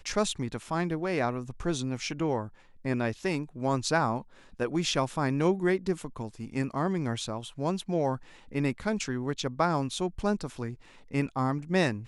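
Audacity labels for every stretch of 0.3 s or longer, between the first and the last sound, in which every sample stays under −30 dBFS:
2.450000	2.850000	silence
4.180000	4.600000	silence
8.160000	8.550000	silence
10.710000	11.140000	silence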